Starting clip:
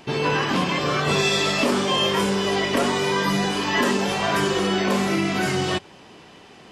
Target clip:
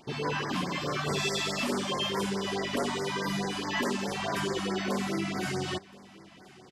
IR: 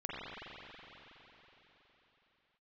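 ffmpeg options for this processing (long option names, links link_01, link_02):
-filter_complex "[0:a]asettb=1/sr,asplit=3[link_01][link_02][link_03];[link_01]atrim=end=0.534[link_04];[link_02]atrim=start=0.53:end=1.91,asetpts=PTS-STARTPTS,afade=type=in:duration=0.004:curve=qsin,afade=type=out:start_time=1.376:duration=0.004:curve=qsin,highshelf=frequency=12000:gain=8[link_05];[link_03]atrim=start=1.906[link_06];[link_04][link_05]acrossfade=duration=0.004:curve1=hsin:curve2=qsin[link_07];[link_07][link_06]acrossfade=duration=0.004:curve1=qsin:curve2=hsin,aecho=1:1:1022:0.0708,afftfilt=real='re*(1-between(b*sr/1024,380*pow(3300/380,0.5+0.5*sin(2*PI*4.7*pts/sr))/1.41,380*pow(3300/380,0.5+0.5*sin(2*PI*4.7*pts/sr))*1.41))':imag='im*(1-between(b*sr/1024,380*pow(3300/380,0.5+0.5*sin(2*PI*4.7*pts/sr))/1.41,380*pow(3300/380,0.5+0.5*sin(2*PI*4.7*pts/sr))*1.41))':win_size=1024:overlap=0.75,volume=-8.5dB"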